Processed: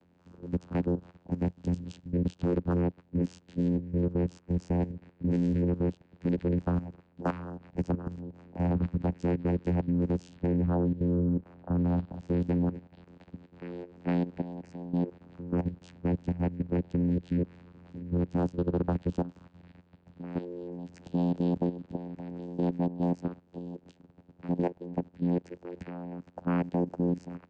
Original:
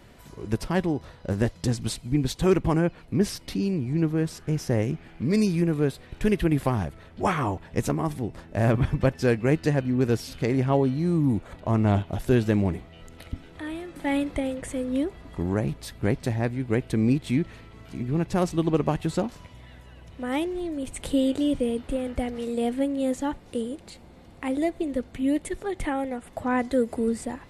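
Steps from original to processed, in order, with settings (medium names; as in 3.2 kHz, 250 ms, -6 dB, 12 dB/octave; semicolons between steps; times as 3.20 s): vocoder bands 8, saw 87.8 Hz; level held to a coarse grid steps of 13 dB; 10.37–11.78 s: treble shelf 3 kHz -9.5 dB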